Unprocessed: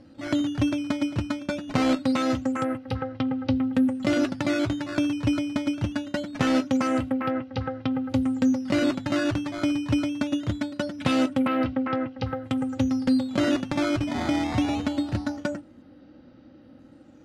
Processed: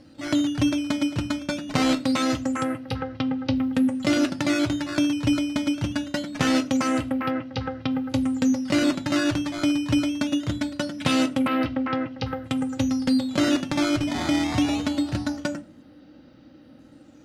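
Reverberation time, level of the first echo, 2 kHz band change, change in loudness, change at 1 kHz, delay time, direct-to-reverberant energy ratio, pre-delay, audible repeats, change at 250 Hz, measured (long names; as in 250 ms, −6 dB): 0.40 s, no echo audible, +2.5 dB, +1.5 dB, +1.0 dB, no echo audible, 11.0 dB, 7 ms, no echo audible, +1.5 dB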